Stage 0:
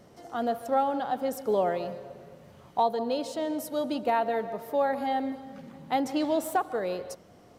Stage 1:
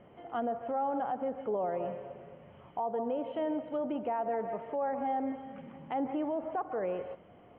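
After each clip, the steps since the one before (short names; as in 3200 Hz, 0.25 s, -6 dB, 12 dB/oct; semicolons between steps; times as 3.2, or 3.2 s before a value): treble ducked by the level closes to 1500 Hz, closed at -25.5 dBFS; rippled Chebyshev low-pass 3200 Hz, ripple 3 dB; limiter -25.5 dBFS, peak gain reduction 9.5 dB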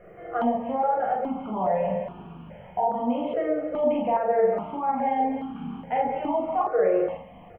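doubler 42 ms -2.5 dB; shoebox room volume 230 m³, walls furnished, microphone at 1.8 m; step phaser 2.4 Hz 920–2000 Hz; gain +7 dB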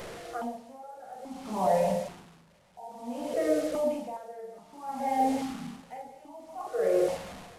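delta modulation 64 kbps, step -35 dBFS; dB-linear tremolo 0.56 Hz, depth 22 dB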